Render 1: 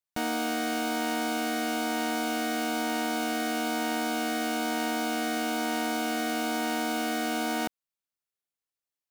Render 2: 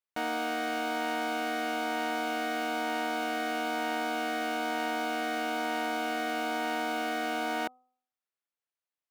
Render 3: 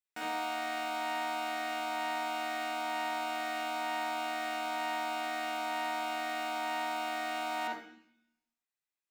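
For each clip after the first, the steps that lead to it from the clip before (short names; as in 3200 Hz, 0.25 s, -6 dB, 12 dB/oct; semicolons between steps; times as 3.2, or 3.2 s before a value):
tone controls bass -14 dB, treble -10 dB; de-hum 252.7 Hz, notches 5
reverb RT60 0.65 s, pre-delay 46 ms, DRR -2.5 dB; gain -4.5 dB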